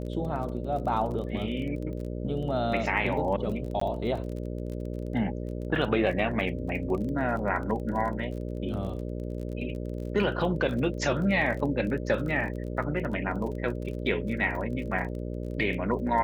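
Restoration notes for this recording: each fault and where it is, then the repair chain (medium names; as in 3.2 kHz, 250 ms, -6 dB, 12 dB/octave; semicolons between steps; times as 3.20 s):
buzz 60 Hz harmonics 10 -34 dBFS
crackle 28 per s -36 dBFS
3.80–3.81 s: dropout 14 ms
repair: de-click; de-hum 60 Hz, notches 10; interpolate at 3.80 s, 14 ms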